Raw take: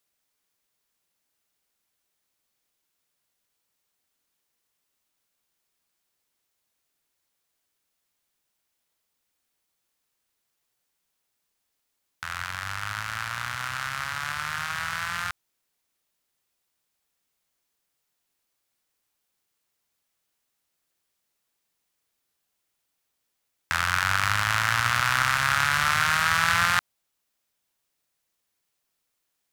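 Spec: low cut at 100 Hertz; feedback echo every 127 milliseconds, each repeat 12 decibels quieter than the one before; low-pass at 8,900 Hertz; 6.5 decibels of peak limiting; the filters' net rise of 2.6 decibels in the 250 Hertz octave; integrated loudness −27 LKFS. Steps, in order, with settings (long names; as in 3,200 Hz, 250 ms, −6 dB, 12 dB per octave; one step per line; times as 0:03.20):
high-pass filter 100 Hz
low-pass filter 8,900 Hz
parametric band 250 Hz +5.5 dB
brickwall limiter −11 dBFS
repeating echo 127 ms, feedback 25%, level −12 dB
level +0.5 dB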